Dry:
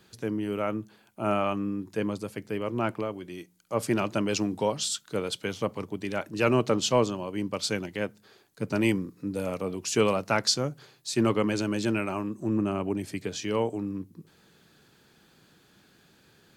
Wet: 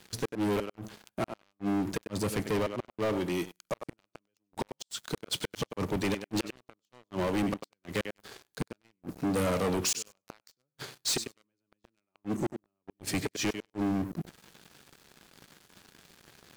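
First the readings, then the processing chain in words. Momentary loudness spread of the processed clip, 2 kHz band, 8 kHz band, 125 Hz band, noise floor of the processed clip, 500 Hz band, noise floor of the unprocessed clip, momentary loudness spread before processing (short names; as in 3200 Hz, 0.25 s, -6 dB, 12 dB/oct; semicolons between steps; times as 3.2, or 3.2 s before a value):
14 LU, -5.0 dB, -2.0 dB, -4.5 dB, under -85 dBFS, -6.5 dB, -61 dBFS, 10 LU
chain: flipped gate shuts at -20 dBFS, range -39 dB; thinning echo 97 ms, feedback 16%, high-pass 230 Hz, level -16 dB; sample leveller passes 5; gain -6.5 dB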